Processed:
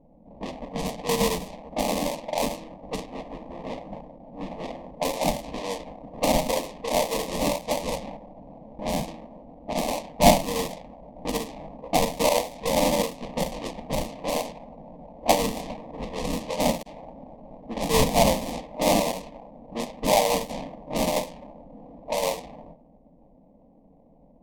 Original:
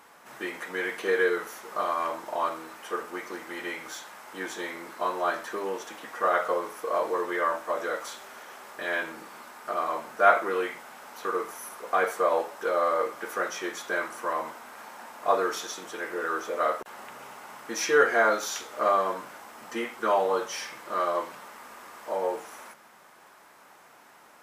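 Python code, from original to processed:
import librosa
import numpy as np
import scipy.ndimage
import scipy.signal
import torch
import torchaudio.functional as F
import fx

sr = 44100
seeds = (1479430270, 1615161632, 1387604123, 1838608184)

y = fx.sample_hold(x, sr, seeds[0], rate_hz=1500.0, jitter_pct=20)
y = fx.env_lowpass(y, sr, base_hz=380.0, full_db=-25.5)
y = fx.fixed_phaser(y, sr, hz=380.0, stages=6)
y = y * librosa.db_to_amplitude(5.0)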